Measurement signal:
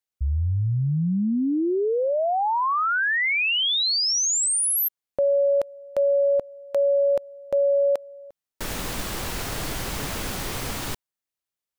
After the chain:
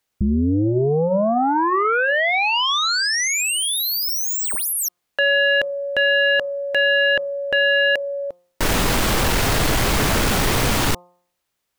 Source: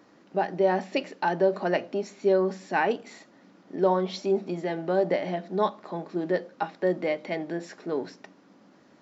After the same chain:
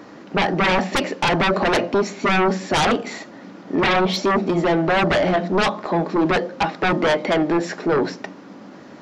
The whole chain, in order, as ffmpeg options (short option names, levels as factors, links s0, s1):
-af "aeval=exprs='0.282*sin(PI/2*5.62*val(0)/0.282)':c=same,highshelf=f=4200:g=-5.5,bandreject=f=176.8:t=h:w=4,bandreject=f=353.6:t=h:w=4,bandreject=f=530.4:t=h:w=4,bandreject=f=707.2:t=h:w=4,bandreject=f=884:t=h:w=4,bandreject=f=1060.8:t=h:w=4,bandreject=f=1237.6:t=h:w=4,volume=0.75"